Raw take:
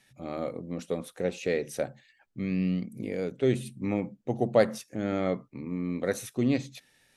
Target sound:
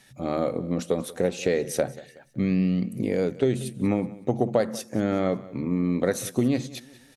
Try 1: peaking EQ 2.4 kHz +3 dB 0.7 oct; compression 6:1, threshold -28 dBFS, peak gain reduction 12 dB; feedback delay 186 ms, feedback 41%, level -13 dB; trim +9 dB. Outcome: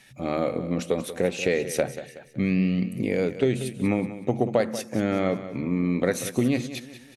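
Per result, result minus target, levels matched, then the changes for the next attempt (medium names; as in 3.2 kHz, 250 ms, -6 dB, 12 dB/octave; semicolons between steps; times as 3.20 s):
echo-to-direct +6.5 dB; 2 kHz band +4.0 dB
change: feedback delay 186 ms, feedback 41%, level -19.5 dB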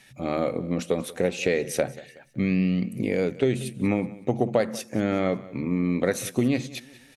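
2 kHz band +4.0 dB
change: peaking EQ 2.4 kHz -4 dB 0.7 oct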